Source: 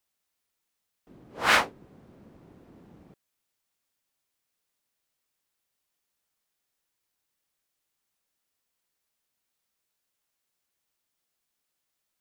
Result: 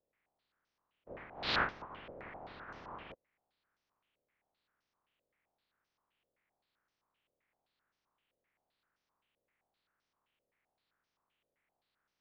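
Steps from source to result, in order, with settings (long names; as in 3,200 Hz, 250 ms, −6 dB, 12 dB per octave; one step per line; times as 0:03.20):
ceiling on every frequency bin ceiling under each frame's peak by 25 dB
reversed playback
downward compressor 4 to 1, threshold −34 dBFS, peak gain reduction 14.5 dB
reversed playback
high-frequency loss of the air 300 metres
low-pass on a step sequencer 7.7 Hz 540–5,900 Hz
level +2.5 dB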